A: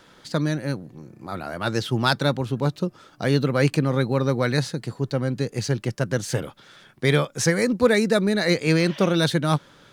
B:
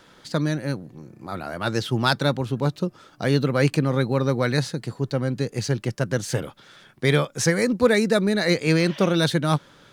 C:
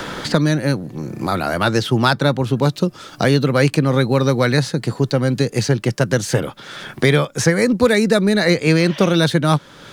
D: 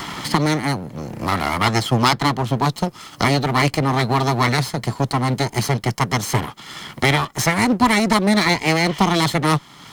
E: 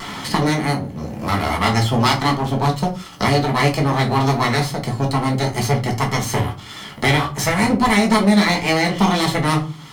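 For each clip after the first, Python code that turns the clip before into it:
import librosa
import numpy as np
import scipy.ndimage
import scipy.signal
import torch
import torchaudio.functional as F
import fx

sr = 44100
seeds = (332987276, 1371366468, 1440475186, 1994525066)

y1 = x
y2 = fx.band_squash(y1, sr, depth_pct=70)
y2 = y2 * 10.0 ** (5.5 / 20.0)
y3 = fx.lower_of_two(y2, sr, delay_ms=0.96)
y3 = fx.highpass(y3, sr, hz=110.0, slope=6)
y3 = y3 * 10.0 ** (1.0 / 20.0)
y4 = fx.wow_flutter(y3, sr, seeds[0], rate_hz=2.1, depth_cents=27.0)
y4 = fx.room_shoebox(y4, sr, seeds[1], volume_m3=170.0, walls='furnished', distance_m=1.5)
y4 = y4 * 10.0 ** (-3.0 / 20.0)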